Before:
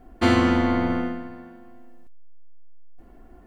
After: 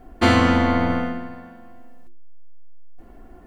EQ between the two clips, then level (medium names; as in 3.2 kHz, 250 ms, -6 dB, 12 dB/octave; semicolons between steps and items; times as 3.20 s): hum notches 50/100/150/200/250/300/350 Hz; +4.5 dB